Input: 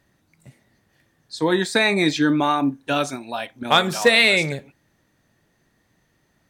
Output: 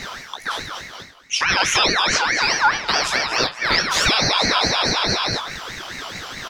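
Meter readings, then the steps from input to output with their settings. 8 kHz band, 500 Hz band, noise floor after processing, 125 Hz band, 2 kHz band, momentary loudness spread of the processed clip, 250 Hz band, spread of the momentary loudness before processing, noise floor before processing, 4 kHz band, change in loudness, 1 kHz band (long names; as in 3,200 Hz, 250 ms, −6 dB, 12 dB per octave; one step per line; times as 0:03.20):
+10.0 dB, −4.0 dB, −40 dBFS, −1.0 dB, +3.0 dB, 14 LU, −7.5 dB, 15 LU, −66 dBFS, +6.0 dB, +1.0 dB, +4.0 dB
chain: on a send: repeating echo 238 ms, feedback 45%, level −14 dB
on the sum: gain on a spectral selection 0:02.24–0:02.64, 290–2,200 Hz −10 dB
reversed playback
upward compression, threshold −21 dBFS
reversed playback
brickwall limiter −11.5 dBFS, peak gain reduction 7 dB
flat-topped bell 3,100 Hz +13.5 dB
pitch vibrato 4.1 Hz 8.4 cents
downward compressor 6 to 1, threshold −17 dBFS, peak gain reduction 12 dB
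low-shelf EQ 240 Hz +8 dB
chorus effect 0.32 Hz, delay 16 ms, depth 5 ms
double-tracking delay 29 ms −10.5 dB
ring modulator whose carrier an LFO sweeps 1,600 Hz, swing 30%, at 4.7 Hz
level +7.5 dB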